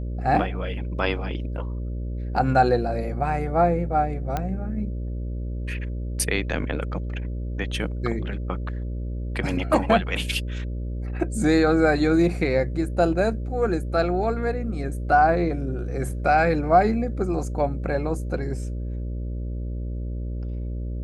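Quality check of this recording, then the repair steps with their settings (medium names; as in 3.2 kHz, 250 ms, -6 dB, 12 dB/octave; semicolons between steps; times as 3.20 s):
buzz 60 Hz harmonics 10 -29 dBFS
4.37 s: pop -13 dBFS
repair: de-click; de-hum 60 Hz, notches 10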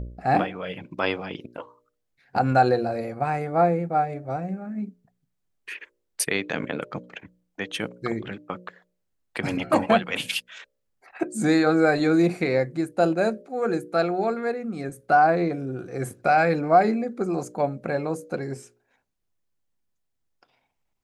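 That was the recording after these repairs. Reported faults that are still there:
nothing left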